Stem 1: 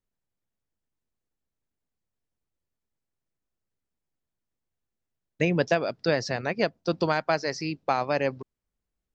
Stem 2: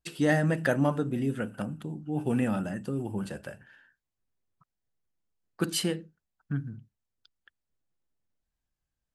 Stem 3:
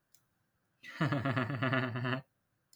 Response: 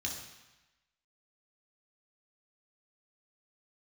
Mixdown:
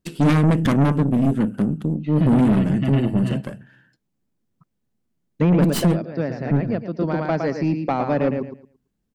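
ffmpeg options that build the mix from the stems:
-filter_complex "[0:a]acrossover=split=2700[link_01][link_02];[link_02]acompressor=threshold=-49dB:ratio=4:attack=1:release=60[link_03];[link_01][link_03]amix=inputs=2:normalize=0,volume=1dB,asplit=2[link_04][link_05];[link_05]volume=-7.5dB[link_06];[1:a]aeval=exprs='0.299*(cos(1*acos(clip(val(0)/0.299,-1,1)))-cos(1*PI/2))+0.119*(cos(6*acos(clip(val(0)/0.299,-1,1)))-cos(6*PI/2))':channel_layout=same,volume=1dB,asplit=2[link_07][link_08];[2:a]lowpass=frequency=3000:width_type=q:width=1.5,equalizer=frequency=1400:width_type=o:width=0.89:gain=-14,aecho=1:1:6.3:0.8,adelay=1200,volume=0.5dB,asplit=2[link_09][link_10];[link_10]volume=-19.5dB[link_11];[link_08]apad=whole_len=403281[link_12];[link_04][link_12]sidechaincompress=threshold=-46dB:ratio=4:attack=39:release=447[link_13];[3:a]atrim=start_sample=2205[link_14];[link_11][link_14]afir=irnorm=-1:irlink=0[link_15];[link_06]aecho=0:1:112|224|336|448:1|0.23|0.0529|0.0122[link_16];[link_13][link_07][link_09][link_15][link_16]amix=inputs=5:normalize=0,equalizer=frequency=210:width=0.73:gain=15,asoftclip=type=tanh:threshold=-11.5dB"

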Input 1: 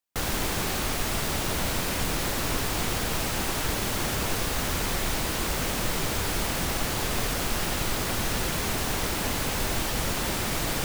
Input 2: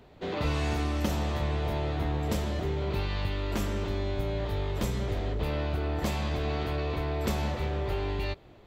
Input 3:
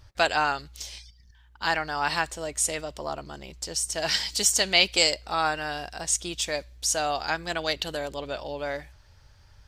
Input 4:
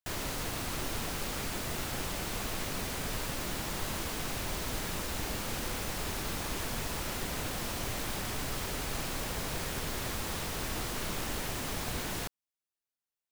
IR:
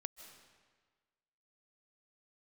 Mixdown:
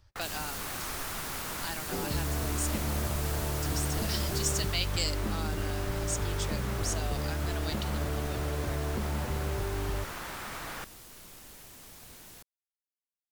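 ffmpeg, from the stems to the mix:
-filter_complex "[0:a]equalizer=frequency=1300:width_type=o:width=2:gain=12.5,volume=-16.5dB[link_01];[1:a]acompressor=threshold=-31dB:ratio=6,lowpass=1200,adelay=1700,volume=3dB[link_02];[2:a]volume=-9.5dB[link_03];[3:a]aemphasis=mode=production:type=cd,adelay=150,volume=-6.5dB,afade=type=out:start_time=4.34:duration=0.6:silence=0.281838[link_04];[link_01][link_02][link_03][link_04]amix=inputs=4:normalize=0,acrossover=split=350|3000[link_05][link_06][link_07];[link_06]acompressor=threshold=-37dB:ratio=6[link_08];[link_05][link_08][link_07]amix=inputs=3:normalize=0"

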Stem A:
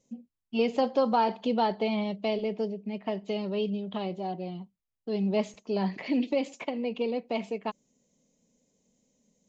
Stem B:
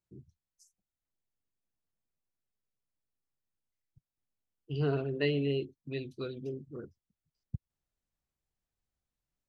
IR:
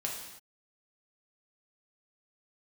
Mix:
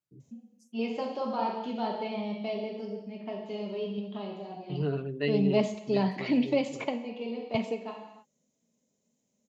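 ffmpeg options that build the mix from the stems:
-filter_complex "[0:a]adelay=200,volume=-1.5dB,asplit=2[link_01][link_02];[link_02]volume=-7dB[link_03];[1:a]aecho=1:1:6.9:0.66,volume=-4dB,asplit=2[link_04][link_05];[link_05]apad=whole_len=427169[link_06];[link_01][link_06]sidechaingate=range=-33dB:threshold=-60dB:ratio=16:detection=peak[link_07];[2:a]atrim=start_sample=2205[link_08];[link_03][link_08]afir=irnorm=-1:irlink=0[link_09];[link_07][link_04][link_09]amix=inputs=3:normalize=0,highpass=84"

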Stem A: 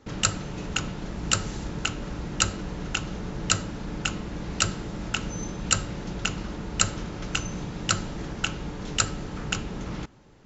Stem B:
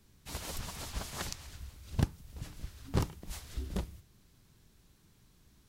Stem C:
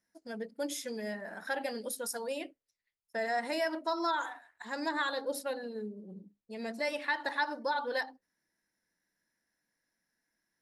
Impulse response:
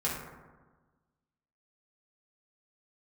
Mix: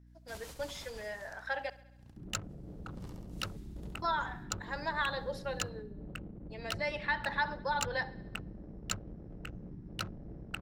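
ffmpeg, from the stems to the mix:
-filter_complex "[0:a]afwtdn=0.0282,adynamicsmooth=sensitivity=4:basefreq=730,adelay=2100,volume=-12.5dB[link_01];[1:a]volume=3dB,afade=type=out:start_time=0.77:duration=0.42:silence=0.237137,afade=type=in:start_time=2.37:duration=0.74:silence=0.266073,asplit=2[link_02][link_03];[link_03]volume=-9dB[link_04];[2:a]acrossover=split=450 5200:gain=0.0891 1 0.0708[link_05][link_06][link_07];[link_05][link_06][link_07]amix=inputs=3:normalize=0,volume=0dB,asplit=3[link_08][link_09][link_10];[link_08]atrim=end=1.7,asetpts=PTS-STARTPTS,afade=type=out:start_time=1.696:duration=0.004:curve=hsin[link_11];[link_09]atrim=start=1.7:end=4.02,asetpts=PTS-STARTPTS,volume=0[link_12];[link_10]atrim=start=4.02,asetpts=PTS-STARTPTS,afade=type=in:duration=0.004:curve=hsin[link_13];[link_11][link_12][link_13]concat=n=3:v=0:a=1,asplit=3[link_14][link_15][link_16];[link_15]volume=-19.5dB[link_17];[link_16]apad=whole_len=255296[link_18];[link_02][link_18]sidechaingate=range=-15dB:threshold=-52dB:ratio=16:detection=peak[link_19];[link_04][link_17]amix=inputs=2:normalize=0,aecho=0:1:68|136|204|272|340|408|476|544|612|680:1|0.6|0.36|0.216|0.13|0.0778|0.0467|0.028|0.0168|0.0101[link_20];[link_01][link_19][link_14][link_20]amix=inputs=4:normalize=0,aeval=exprs='val(0)+0.00141*(sin(2*PI*60*n/s)+sin(2*PI*2*60*n/s)/2+sin(2*PI*3*60*n/s)/3+sin(2*PI*4*60*n/s)/4+sin(2*PI*5*60*n/s)/5)':channel_layout=same"

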